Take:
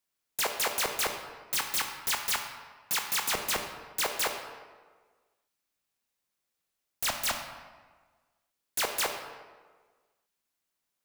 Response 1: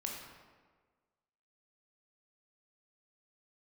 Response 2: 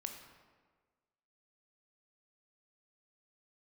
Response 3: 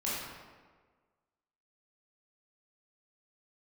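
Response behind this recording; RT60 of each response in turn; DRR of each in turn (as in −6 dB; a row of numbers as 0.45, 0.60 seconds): 2; 1.5, 1.5, 1.5 seconds; −1.0, 4.0, −8.5 decibels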